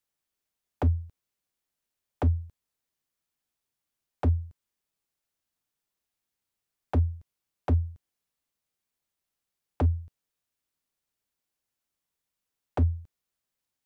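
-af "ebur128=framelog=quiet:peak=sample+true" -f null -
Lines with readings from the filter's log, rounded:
Integrated loudness:
  I:         -29.8 LUFS
  Threshold: -40.8 LUFS
Loudness range:
  LRA:         3.0 LU
  Threshold: -55.6 LUFS
  LRA low:   -37.4 LUFS
  LRA high:  -34.4 LUFS
Sample peak:
  Peak:      -16.0 dBFS
True peak:
  Peak:      -16.0 dBFS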